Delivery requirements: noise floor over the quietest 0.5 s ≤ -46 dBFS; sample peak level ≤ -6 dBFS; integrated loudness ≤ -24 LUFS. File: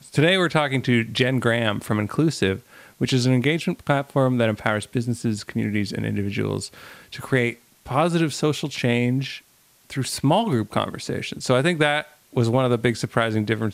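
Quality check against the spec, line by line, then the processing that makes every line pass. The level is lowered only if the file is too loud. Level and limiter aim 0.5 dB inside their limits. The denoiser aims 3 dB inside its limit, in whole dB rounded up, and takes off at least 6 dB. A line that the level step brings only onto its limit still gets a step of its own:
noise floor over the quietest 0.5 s -57 dBFS: pass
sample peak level -5.0 dBFS: fail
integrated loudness -22.5 LUFS: fail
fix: trim -2 dB

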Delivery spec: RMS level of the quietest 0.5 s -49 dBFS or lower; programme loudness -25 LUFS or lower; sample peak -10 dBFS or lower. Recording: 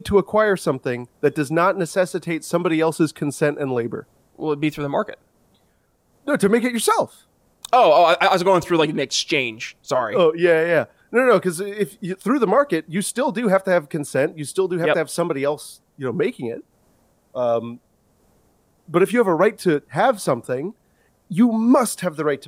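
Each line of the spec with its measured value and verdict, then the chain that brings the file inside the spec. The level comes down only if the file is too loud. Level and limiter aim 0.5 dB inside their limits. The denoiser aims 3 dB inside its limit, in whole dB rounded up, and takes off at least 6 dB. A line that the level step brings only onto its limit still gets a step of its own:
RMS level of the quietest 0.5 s -63 dBFS: pass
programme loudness -20.0 LUFS: fail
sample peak -5.5 dBFS: fail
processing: trim -5.5 dB

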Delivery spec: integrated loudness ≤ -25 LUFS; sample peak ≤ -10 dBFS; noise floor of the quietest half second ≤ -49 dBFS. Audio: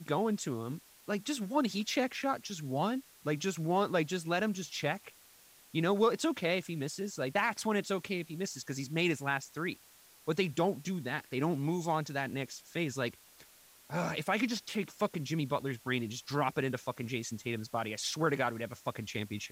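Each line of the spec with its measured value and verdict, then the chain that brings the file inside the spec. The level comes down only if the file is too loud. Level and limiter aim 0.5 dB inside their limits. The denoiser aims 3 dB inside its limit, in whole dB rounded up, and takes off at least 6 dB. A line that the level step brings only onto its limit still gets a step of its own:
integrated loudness -34.0 LUFS: pass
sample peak -17.0 dBFS: pass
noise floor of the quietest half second -60 dBFS: pass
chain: none needed

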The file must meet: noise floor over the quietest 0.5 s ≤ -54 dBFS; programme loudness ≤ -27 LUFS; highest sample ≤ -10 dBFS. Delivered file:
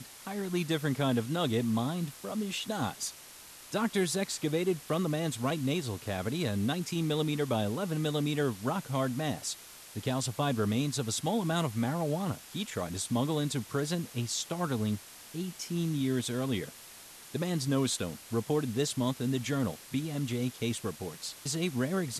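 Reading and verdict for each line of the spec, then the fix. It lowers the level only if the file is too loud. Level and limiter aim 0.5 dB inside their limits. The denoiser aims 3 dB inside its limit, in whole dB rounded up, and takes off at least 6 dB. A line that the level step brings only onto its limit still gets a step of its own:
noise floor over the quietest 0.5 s -50 dBFS: fail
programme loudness -32.5 LUFS: pass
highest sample -16.5 dBFS: pass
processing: noise reduction 7 dB, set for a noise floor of -50 dBFS

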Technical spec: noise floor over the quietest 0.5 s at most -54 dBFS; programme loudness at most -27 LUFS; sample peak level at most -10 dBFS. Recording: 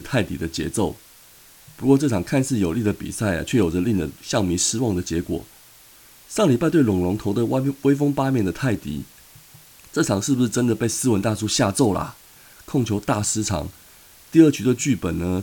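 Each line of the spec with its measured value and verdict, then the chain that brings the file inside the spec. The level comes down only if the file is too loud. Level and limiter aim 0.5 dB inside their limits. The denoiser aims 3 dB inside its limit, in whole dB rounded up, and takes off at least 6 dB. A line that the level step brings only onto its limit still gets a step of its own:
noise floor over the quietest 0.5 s -49 dBFS: fail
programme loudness -21.5 LUFS: fail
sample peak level -2.0 dBFS: fail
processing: trim -6 dB; peak limiter -10.5 dBFS

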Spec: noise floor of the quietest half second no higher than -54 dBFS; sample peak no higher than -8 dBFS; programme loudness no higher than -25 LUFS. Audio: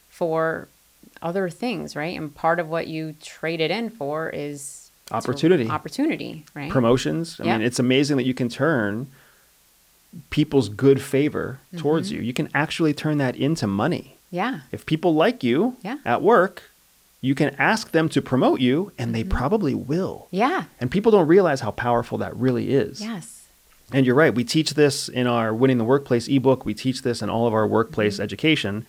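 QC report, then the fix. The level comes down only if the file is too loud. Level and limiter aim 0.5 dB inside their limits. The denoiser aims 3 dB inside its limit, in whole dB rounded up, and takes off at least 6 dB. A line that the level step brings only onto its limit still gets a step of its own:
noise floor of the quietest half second -58 dBFS: pass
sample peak -5.5 dBFS: fail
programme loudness -22.0 LUFS: fail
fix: trim -3.5 dB

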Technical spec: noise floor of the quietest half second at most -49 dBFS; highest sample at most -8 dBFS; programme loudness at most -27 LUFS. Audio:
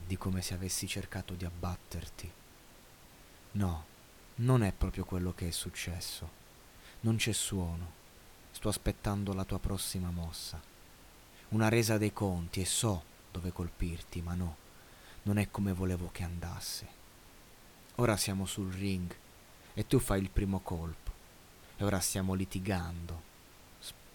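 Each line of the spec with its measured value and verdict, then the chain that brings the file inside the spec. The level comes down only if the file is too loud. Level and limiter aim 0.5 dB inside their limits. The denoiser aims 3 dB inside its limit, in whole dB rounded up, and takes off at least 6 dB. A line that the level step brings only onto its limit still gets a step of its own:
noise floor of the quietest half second -57 dBFS: pass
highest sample -14.5 dBFS: pass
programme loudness -35.5 LUFS: pass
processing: none needed

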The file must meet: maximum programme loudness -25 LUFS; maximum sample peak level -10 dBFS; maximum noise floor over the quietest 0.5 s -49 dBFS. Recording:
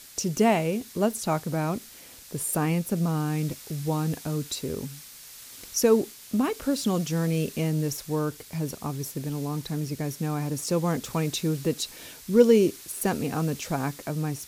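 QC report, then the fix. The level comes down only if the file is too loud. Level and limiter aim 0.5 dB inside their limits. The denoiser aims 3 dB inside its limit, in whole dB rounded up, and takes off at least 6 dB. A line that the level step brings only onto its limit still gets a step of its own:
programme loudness -27.0 LUFS: pass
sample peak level -5.0 dBFS: fail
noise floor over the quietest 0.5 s -47 dBFS: fail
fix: noise reduction 6 dB, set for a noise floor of -47 dBFS; peak limiter -10.5 dBFS

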